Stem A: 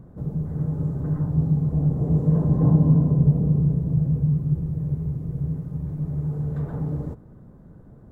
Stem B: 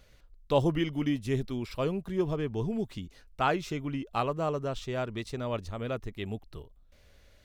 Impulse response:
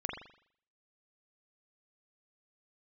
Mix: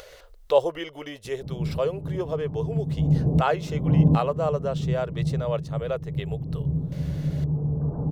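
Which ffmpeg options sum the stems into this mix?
-filter_complex "[0:a]lowpass=frequency=1000:width=0.5412,lowpass=frequency=1000:width=1.3066,adelay=1250,volume=1dB[link_01];[1:a]lowshelf=frequency=340:width_type=q:width=3:gain=-12.5,acompressor=mode=upward:threshold=-35dB:ratio=2.5,volume=1dB,asplit=2[link_02][link_03];[link_03]apad=whole_len=413214[link_04];[link_01][link_04]sidechaincompress=threshold=-35dB:ratio=8:attack=7.9:release=390[link_05];[link_05][link_02]amix=inputs=2:normalize=0,bandreject=frequency=2400:width=17"

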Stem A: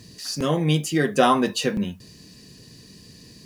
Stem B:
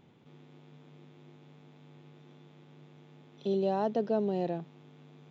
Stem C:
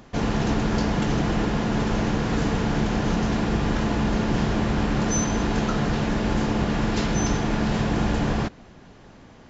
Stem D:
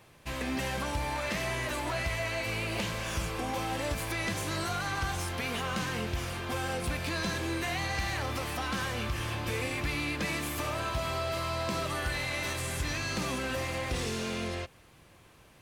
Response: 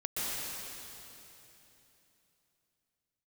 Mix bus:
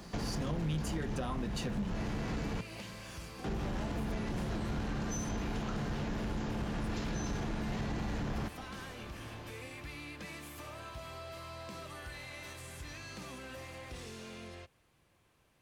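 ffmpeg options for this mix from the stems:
-filter_complex "[0:a]equalizer=frequency=190:width_type=o:width=0.32:gain=6.5,volume=-8dB[link_01];[1:a]volume=-12.5dB[link_02];[2:a]acompressor=threshold=-27dB:ratio=6,volume=-2.5dB,asplit=3[link_03][link_04][link_05];[link_03]atrim=end=2.61,asetpts=PTS-STARTPTS,afade=type=out:start_time=2.606:duration=0.004:curve=hsin[link_06];[link_04]atrim=start=2.61:end=3.44,asetpts=PTS-STARTPTS,volume=0[link_07];[link_05]atrim=start=3.44,asetpts=PTS-STARTPTS,afade=type=in:duration=0.004:curve=hsin[link_08];[link_06][link_07][link_08]concat=n=3:v=0:a=1[link_09];[3:a]volume=-13dB[link_10];[link_01][link_02][link_09][link_10]amix=inputs=4:normalize=0,acrossover=split=140[link_11][link_12];[link_12]acompressor=threshold=-34dB:ratio=10[link_13];[link_11][link_13]amix=inputs=2:normalize=0,asoftclip=type=tanh:threshold=-28dB"

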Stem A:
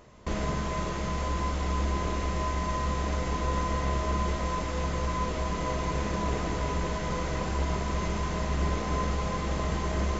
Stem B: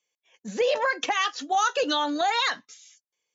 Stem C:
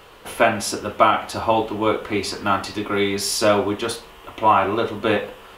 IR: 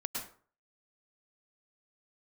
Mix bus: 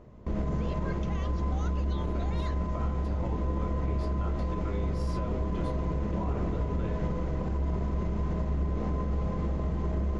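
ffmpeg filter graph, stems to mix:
-filter_complex "[0:a]lowpass=frequency=3200:poles=1,tiltshelf=frequency=760:gain=8,volume=-2.5dB[link_01];[1:a]volume=-19dB,asplit=2[link_02][link_03];[2:a]aemphasis=mode=reproduction:type=riaa,acrossover=split=170[link_04][link_05];[link_05]acompressor=threshold=-19dB:ratio=6[link_06];[link_04][link_06]amix=inputs=2:normalize=0,adelay=1750,volume=-15.5dB[link_07];[link_03]apad=whole_len=322861[link_08];[link_07][link_08]sidechaincompress=threshold=-45dB:ratio=8:attack=16:release=809[link_09];[link_01][link_02][link_09]amix=inputs=3:normalize=0,alimiter=limit=-22dB:level=0:latency=1:release=81"

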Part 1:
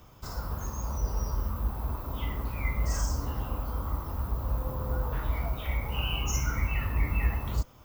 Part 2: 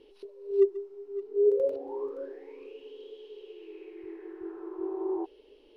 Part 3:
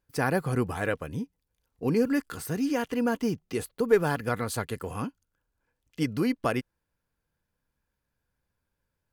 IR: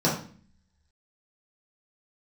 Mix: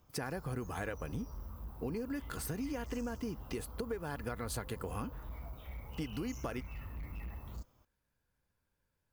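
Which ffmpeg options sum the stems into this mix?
-filter_complex "[0:a]equalizer=frequency=2300:width_type=o:width=2.2:gain=-3.5,asoftclip=type=hard:threshold=-25dB,volume=-14dB[link_01];[2:a]acompressor=threshold=-31dB:ratio=6,volume=-1.5dB[link_02];[link_01][link_02]amix=inputs=2:normalize=0,acompressor=threshold=-37dB:ratio=2"

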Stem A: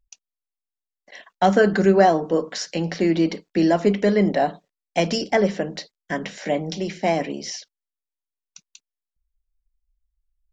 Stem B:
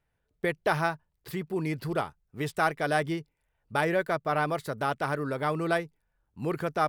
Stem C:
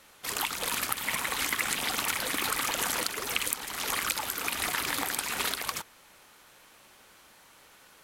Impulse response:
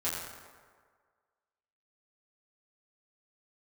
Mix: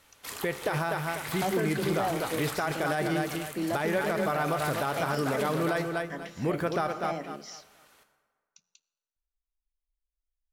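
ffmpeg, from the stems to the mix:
-filter_complex "[0:a]bandreject=frequency=60:width_type=h:width=6,bandreject=frequency=120:width_type=h:width=6,bandreject=frequency=180:width_type=h:width=6,volume=-13.5dB,asplit=2[link_01][link_02];[link_02]volume=-22.5dB[link_03];[1:a]volume=2dB,asplit=4[link_04][link_05][link_06][link_07];[link_05]volume=-18dB[link_08];[link_06]volume=-6.5dB[link_09];[2:a]alimiter=limit=-17dB:level=0:latency=1:release=173,volume=-7.5dB,asplit=2[link_10][link_11];[link_11]volume=-8dB[link_12];[link_07]apad=whole_len=354227[link_13];[link_10][link_13]sidechaincompress=threshold=-26dB:ratio=8:attack=7.9:release=1020[link_14];[3:a]atrim=start_sample=2205[link_15];[link_03][link_08][link_12]amix=inputs=3:normalize=0[link_16];[link_16][link_15]afir=irnorm=-1:irlink=0[link_17];[link_09]aecho=0:1:246|492|738|984:1|0.27|0.0729|0.0197[link_18];[link_01][link_04][link_14][link_17][link_18]amix=inputs=5:normalize=0,alimiter=limit=-19dB:level=0:latency=1:release=53"

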